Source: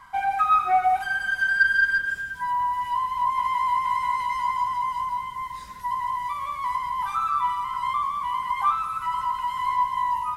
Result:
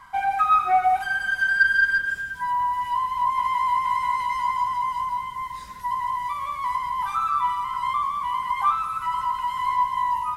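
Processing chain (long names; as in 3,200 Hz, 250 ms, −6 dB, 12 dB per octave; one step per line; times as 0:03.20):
level +1 dB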